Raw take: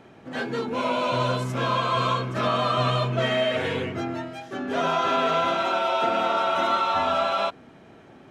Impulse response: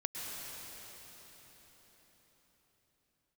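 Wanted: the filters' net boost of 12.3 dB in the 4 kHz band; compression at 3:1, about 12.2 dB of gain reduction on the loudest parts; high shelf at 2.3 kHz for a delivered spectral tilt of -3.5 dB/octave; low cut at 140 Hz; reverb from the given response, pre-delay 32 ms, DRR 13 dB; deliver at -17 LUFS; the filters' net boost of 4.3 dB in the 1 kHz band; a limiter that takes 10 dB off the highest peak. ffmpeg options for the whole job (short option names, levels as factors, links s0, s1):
-filter_complex "[0:a]highpass=140,equalizer=f=1000:t=o:g=3,highshelf=f=2300:g=8,equalizer=f=4000:t=o:g=8.5,acompressor=threshold=0.0251:ratio=3,alimiter=level_in=1.68:limit=0.0631:level=0:latency=1,volume=0.596,asplit=2[s0][s1];[1:a]atrim=start_sample=2205,adelay=32[s2];[s1][s2]afir=irnorm=-1:irlink=0,volume=0.168[s3];[s0][s3]amix=inputs=2:normalize=0,volume=8.91"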